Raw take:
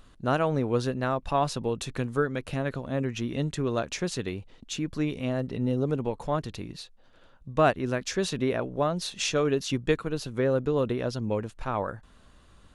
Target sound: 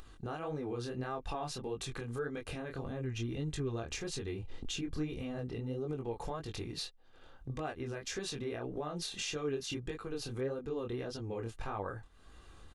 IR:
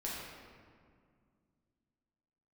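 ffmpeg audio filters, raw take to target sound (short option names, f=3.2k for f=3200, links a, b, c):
-filter_complex "[0:a]asettb=1/sr,asplit=3[a][b][c];[a]atrim=end=2.824[d];[b]atrim=start=2.82:end=5.38,asetpts=PTS-STARTPTS,afade=t=in:d=0.004:c=qsin,afade=t=out:st=2.556:d=0.004:c=qsin,lowshelf=f=140:g=9.5[e];[c]atrim=start=5.376[f];[d][e]acrossfade=d=0.004:c1=hsin:c2=qsin[g];[g][f]acrossfade=d=0.004:c1=qsin:c2=hsin,agate=range=-16dB:threshold=-44dB:ratio=16:detection=peak,acompressor=threshold=-42dB:ratio=3,alimiter=level_in=11dB:limit=-24dB:level=0:latency=1:release=80,volume=-11dB,flanger=delay=19.5:depth=6.8:speed=1.7,acompressor=mode=upward:threshold=-54dB:ratio=2.5,aecho=1:1:2.5:0.41,volume=9dB"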